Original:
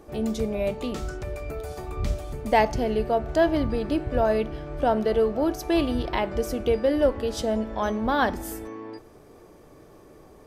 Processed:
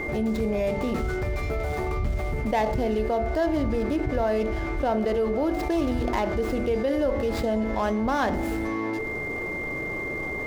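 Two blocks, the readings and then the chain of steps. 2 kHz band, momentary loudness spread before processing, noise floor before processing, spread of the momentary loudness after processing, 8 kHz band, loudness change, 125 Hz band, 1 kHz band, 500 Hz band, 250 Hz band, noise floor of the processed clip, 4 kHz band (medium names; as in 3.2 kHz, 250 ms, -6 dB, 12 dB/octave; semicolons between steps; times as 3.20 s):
+3.5 dB, 12 LU, -51 dBFS, 5 LU, no reading, -0.5 dB, +2.5 dB, -1.5 dB, -1.0 dB, +1.0 dB, -31 dBFS, -4.0 dB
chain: median filter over 15 samples; de-hum 48.96 Hz, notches 16; whistle 2.1 kHz -47 dBFS; level flattener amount 70%; trim -5 dB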